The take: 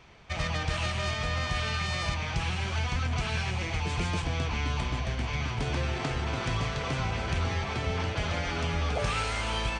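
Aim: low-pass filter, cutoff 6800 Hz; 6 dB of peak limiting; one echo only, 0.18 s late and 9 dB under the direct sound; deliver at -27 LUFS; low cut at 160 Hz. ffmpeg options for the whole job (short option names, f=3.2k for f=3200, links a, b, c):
-af "highpass=160,lowpass=6.8k,alimiter=level_in=1.5dB:limit=-24dB:level=0:latency=1,volume=-1.5dB,aecho=1:1:180:0.355,volume=7dB"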